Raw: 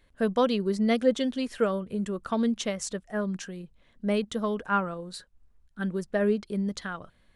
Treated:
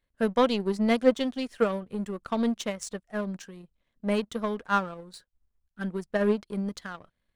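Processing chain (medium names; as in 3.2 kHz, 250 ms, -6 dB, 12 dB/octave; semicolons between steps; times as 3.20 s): power-law waveshaper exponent 1.4; trim +3.5 dB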